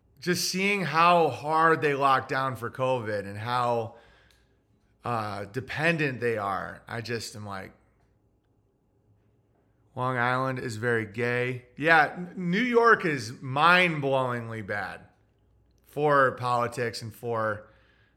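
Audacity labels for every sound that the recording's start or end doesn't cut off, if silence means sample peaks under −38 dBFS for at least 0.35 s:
5.050000	7.670000	sound
9.970000	14.970000	sound
15.930000	17.600000	sound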